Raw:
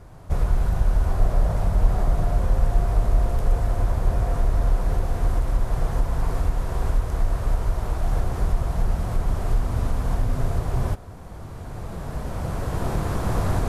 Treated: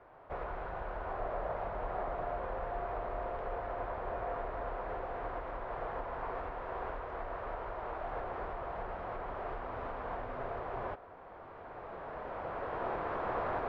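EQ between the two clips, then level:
high-frequency loss of the air 210 metres
three-way crossover with the lows and the highs turned down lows −24 dB, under 390 Hz, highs −23 dB, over 2,900 Hz
−2.0 dB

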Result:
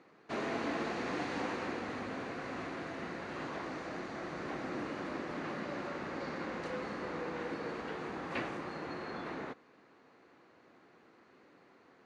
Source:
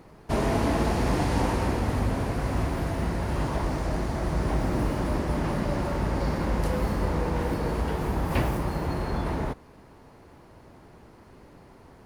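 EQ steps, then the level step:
loudspeaker in its box 360–5,800 Hz, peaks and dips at 410 Hz −4 dB, 620 Hz −7 dB, 910 Hz −9 dB, 3,200 Hz −4 dB, 5,200 Hz −9 dB
−4.0 dB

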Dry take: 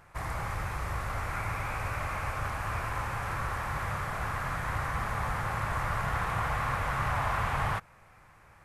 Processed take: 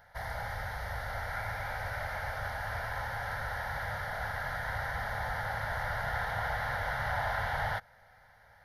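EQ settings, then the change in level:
low-shelf EQ 120 Hz −8 dB
parametric band 160 Hz −6 dB 0.76 octaves
phaser with its sweep stopped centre 1,700 Hz, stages 8
+2.0 dB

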